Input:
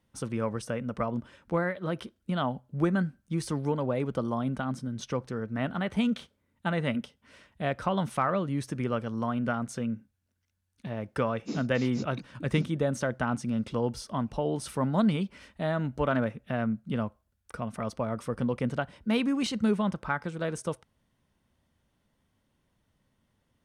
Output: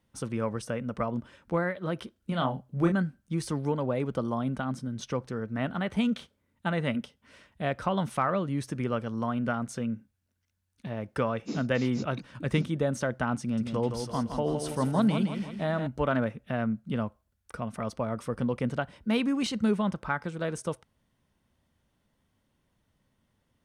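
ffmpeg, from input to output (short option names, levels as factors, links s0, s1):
-filter_complex "[0:a]asettb=1/sr,asplit=3[s0][s1][s2];[s0]atrim=end=2.194[s3];[s1]atrim=start=2.19:end=2.92,asetpts=PTS-STARTPTS,afade=t=in:d=0.004:c=qsin,afade=t=out:st=0.726:d=0.004:c=qsin,asplit=2[s4][s5];[s5]adelay=30,volume=0.562[s6];[s4][s6]amix=inputs=2:normalize=0,atrim=end_sample=32193[s7];[s2]atrim=start=2.916[s8];[s3][s7]acrossfade=d=0.004:c1=hsin:c2=qsin[s9];[s9][s8]acrossfade=d=0.004:c1=qsin:c2=hsin,asettb=1/sr,asplit=3[s10][s11][s12];[s10]atrim=end=13.414[s13];[s11]atrim=start=13.41:end=15.87,asetpts=PTS-STARTPTS,afade=t=in:d=0.004:c=qsin,afade=t=out:st=2.456:d=0.004:c=qsin,aecho=1:1:165|330|495|660|825|990:0.447|0.219|0.107|0.0526|0.0258|0.0126,atrim=end_sample=108486[s14];[s12]atrim=start=15.866[s15];[s13][s14]acrossfade=d=0.004:c1=hsin:c2=qsin[s16];[s16][s15]acrossfade=d=0.004:c1=qsin:c2=hsin"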